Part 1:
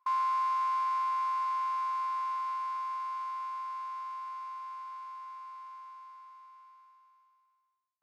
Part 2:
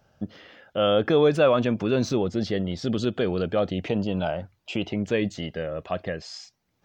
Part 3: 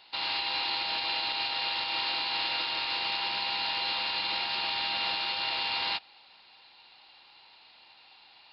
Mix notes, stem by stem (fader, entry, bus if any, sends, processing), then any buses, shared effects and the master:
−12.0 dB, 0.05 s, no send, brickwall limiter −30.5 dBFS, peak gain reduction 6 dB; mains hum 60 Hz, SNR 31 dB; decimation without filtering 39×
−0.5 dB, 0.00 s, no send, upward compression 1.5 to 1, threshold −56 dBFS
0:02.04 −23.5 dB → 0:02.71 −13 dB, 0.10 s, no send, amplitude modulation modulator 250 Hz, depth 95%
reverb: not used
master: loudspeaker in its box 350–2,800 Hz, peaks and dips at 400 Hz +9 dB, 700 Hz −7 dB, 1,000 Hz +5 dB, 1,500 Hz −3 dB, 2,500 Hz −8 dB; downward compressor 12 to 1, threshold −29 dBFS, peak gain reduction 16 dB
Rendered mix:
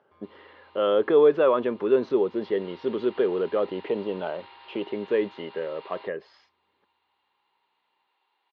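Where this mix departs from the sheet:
stem 3: missing amplitude modulation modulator 250 Hz, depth 95%
master: missing downward compressor 12 to 1, threshold −29 dBFS, peak gain reduction 16 dB

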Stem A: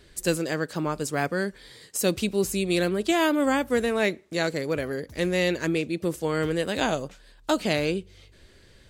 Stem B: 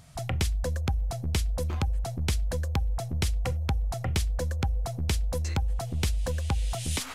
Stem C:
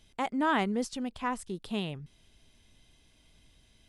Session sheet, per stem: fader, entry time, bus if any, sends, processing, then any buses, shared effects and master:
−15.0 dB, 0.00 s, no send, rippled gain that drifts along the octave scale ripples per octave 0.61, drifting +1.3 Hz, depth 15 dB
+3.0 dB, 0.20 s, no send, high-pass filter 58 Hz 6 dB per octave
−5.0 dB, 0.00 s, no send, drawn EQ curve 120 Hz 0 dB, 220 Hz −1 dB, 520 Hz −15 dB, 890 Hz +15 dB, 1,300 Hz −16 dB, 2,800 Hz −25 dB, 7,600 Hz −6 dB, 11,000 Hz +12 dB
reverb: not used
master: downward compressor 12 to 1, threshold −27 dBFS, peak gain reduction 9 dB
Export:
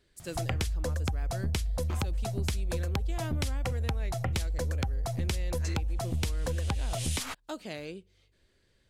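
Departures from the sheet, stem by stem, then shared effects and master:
stem A: missing rippled gain that drifts along the octave scale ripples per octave 0.61, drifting +1.3 Hz, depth 15 dB
stem B: missing high-pass filter 58 Hz 6 dB per octave
stem C: muted

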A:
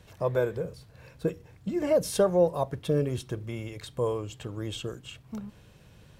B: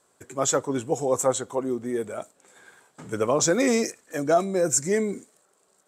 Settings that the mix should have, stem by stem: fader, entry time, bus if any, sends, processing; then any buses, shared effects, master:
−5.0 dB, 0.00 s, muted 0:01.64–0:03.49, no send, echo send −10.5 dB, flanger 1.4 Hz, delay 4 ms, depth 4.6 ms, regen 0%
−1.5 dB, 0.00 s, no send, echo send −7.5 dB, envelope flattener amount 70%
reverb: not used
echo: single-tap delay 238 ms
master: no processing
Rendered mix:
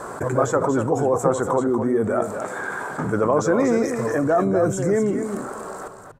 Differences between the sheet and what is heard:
stem A −5.0 dB → +3.5 dB
master: extra high shelf with overshoot 2,000 Hz −13 dB, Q 1.5

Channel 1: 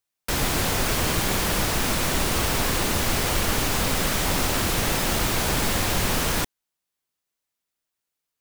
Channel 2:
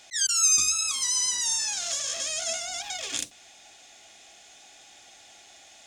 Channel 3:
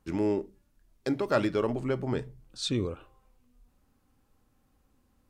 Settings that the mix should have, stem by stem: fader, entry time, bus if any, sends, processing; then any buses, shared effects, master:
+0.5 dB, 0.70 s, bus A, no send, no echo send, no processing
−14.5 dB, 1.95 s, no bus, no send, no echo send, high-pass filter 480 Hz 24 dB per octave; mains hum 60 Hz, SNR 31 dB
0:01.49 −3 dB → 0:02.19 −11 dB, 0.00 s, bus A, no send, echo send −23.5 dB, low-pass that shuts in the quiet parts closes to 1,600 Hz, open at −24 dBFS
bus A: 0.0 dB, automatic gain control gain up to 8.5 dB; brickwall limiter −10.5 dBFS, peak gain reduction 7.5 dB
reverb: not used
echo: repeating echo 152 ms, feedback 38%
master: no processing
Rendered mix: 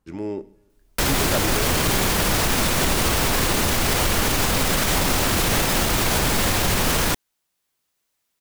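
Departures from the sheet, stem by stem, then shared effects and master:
stem 2: muted
stem 3: missing low-pass that shuts in the quiet parts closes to 1,600 Hz, open at −24 dBFS

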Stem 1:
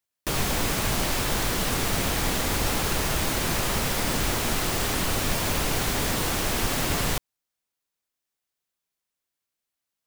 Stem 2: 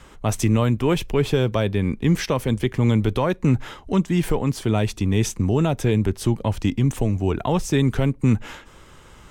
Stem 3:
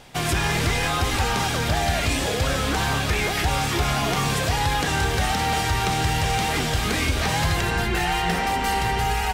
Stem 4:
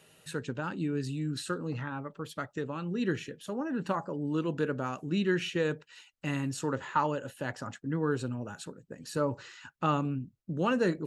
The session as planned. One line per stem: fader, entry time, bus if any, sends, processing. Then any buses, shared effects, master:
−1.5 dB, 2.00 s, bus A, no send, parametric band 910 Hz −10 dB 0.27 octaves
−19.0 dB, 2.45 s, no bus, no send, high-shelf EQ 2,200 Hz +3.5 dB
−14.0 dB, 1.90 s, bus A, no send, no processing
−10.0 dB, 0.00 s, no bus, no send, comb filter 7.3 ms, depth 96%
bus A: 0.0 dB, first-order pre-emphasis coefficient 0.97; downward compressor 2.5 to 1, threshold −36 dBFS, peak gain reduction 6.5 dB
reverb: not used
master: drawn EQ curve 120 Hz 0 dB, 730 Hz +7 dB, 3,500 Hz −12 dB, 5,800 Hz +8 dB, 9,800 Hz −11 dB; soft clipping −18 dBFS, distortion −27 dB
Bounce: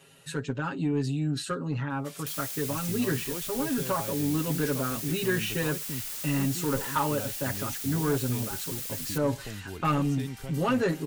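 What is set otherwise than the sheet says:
stem 4 −10.0 dB → +1.0 dB
master: missing drawn EQ curve 120 Hz 0 dB, 730 Hz +7 dB, 3,500 Hz −12 dB, 5,800 Hz +8 dB, 9,800 Hz −11 dB

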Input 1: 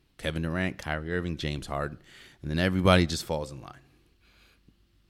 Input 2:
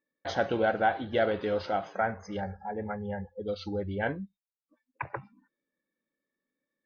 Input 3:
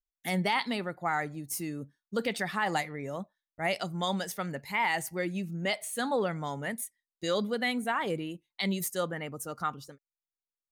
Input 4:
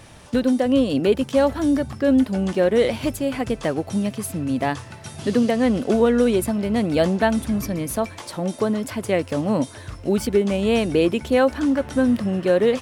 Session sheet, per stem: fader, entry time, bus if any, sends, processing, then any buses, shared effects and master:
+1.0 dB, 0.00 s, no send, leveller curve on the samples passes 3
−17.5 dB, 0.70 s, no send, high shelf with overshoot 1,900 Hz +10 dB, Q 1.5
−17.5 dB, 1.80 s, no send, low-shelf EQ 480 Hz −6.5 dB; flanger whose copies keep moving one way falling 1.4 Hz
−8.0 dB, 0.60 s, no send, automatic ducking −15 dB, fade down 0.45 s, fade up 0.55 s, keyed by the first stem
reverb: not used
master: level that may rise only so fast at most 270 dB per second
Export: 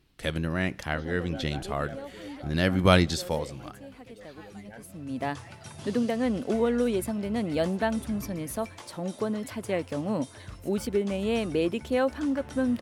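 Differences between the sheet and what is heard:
stem 1: missing leveller curve on the samples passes 3
stem 2: missing high shelf with overshoot 1,900 Hz +10 dB, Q 1.5
master: missing level that may rise only so fast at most 270 dB per second

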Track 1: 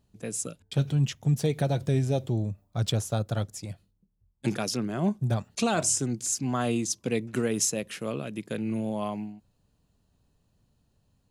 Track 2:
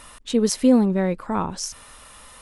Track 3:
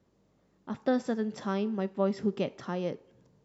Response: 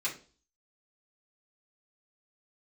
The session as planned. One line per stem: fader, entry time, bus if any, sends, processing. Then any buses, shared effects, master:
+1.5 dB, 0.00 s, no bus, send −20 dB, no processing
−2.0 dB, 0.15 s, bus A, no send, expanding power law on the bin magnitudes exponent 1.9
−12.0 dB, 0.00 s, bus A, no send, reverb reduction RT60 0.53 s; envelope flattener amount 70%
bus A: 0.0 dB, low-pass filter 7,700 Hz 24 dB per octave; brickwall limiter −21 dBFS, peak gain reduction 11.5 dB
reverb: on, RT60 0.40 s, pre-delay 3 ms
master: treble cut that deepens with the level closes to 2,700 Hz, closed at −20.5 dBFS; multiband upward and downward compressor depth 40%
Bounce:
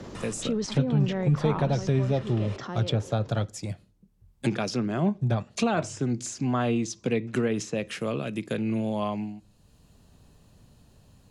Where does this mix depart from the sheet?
stem 2: missing expanding power law on the bin magnitudes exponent 1.9
stem 3: missing reverb reduction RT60 0.53 s

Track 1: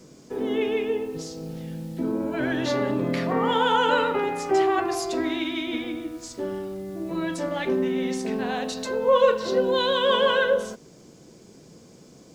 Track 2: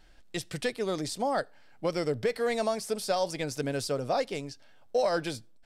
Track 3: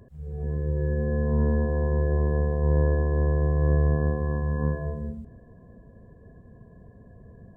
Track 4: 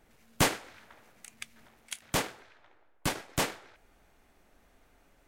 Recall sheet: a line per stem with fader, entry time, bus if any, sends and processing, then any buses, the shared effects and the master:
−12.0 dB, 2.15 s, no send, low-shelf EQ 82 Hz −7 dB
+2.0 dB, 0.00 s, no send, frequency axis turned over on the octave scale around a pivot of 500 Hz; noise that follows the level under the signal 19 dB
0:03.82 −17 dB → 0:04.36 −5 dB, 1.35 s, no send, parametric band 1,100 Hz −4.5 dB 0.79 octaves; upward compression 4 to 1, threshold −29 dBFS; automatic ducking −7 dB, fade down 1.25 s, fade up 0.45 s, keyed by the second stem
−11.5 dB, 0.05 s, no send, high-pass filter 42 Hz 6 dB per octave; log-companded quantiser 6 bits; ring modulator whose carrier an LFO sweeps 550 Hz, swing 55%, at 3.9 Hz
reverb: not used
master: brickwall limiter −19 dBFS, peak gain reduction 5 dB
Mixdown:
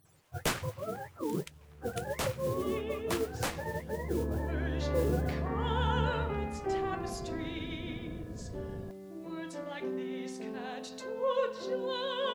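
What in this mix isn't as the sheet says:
stem 2 +2.0 dB → −4.5 dB
stem 4 −11.5 dB → −3.0 dB

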